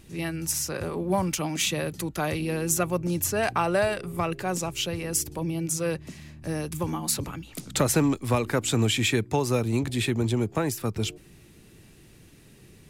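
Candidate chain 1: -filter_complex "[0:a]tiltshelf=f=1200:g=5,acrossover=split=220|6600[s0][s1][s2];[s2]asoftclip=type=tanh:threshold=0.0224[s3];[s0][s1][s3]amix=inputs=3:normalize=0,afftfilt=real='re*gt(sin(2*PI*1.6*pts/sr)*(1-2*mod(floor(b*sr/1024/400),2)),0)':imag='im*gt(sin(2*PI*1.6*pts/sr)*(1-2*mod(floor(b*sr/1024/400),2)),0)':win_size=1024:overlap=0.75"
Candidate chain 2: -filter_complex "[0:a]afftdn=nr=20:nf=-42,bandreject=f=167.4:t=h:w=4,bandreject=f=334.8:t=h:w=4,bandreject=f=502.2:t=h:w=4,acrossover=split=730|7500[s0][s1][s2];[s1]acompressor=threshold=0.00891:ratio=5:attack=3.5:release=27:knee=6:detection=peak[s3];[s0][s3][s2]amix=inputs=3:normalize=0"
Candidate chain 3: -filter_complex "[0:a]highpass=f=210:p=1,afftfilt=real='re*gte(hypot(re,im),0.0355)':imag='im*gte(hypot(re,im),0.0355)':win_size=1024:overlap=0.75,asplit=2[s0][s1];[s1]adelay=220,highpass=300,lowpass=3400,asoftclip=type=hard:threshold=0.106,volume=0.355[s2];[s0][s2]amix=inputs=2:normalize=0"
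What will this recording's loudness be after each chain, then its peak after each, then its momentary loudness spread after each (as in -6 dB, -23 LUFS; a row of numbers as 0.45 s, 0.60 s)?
-28.0 LUFS, -29.0 LUFS, -28.5 LUFS; -10.0 dBFS, -11.5 dBFS, -11.0 dBFS; 11 LU, 8 LU, 10 LU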